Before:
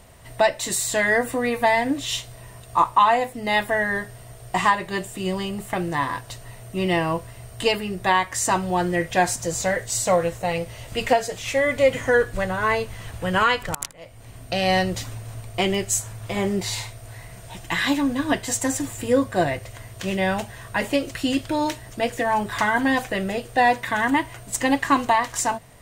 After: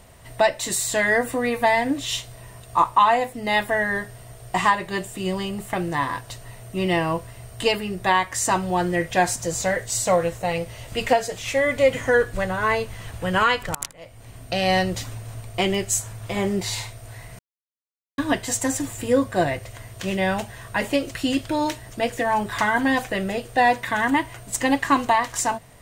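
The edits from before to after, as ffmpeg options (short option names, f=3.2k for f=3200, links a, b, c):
-filter_complex "[0:a]asplit=3[a][b][c];[a]atrim=end=17.39,asetpts=PTS-STARTPTS,afade=t=out:st=17.386:d=0.004:c=hsin[d];[b]atrim=start=17.39:end=18.18,asetpts=PTS-STARTPTS,volume=0[e];[c]atrim=start=18.18,asetpts=PTS-STARTPTS,afade=t=in:d=0.004:c=hsin[f];[d][e][f]concat=n=3:v=0:a=1"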